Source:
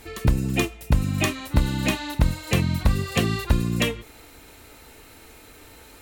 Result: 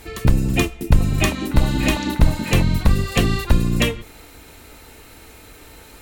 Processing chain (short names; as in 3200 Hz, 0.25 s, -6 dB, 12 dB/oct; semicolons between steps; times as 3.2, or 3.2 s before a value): octaver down 2 oct, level -1 dB; 0.61–2.63 delay with a stepping band-pass 0.197 s, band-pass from 270 Hz, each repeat 1.4 oct, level -2 dB; gain +3.5 dB